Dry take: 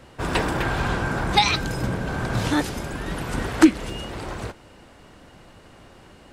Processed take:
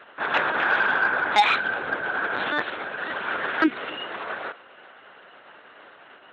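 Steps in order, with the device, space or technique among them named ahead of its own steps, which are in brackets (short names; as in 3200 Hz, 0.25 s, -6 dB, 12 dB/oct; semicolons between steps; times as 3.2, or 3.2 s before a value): talking toy (LPC vocoder at 8 kHz; HPF 490 Hz 12 dB/oct; bell 1500 Hz +8.5 dB 0.49 oct; soft clip -9.5 dBFS, distortion -21 dB); gain +2 dB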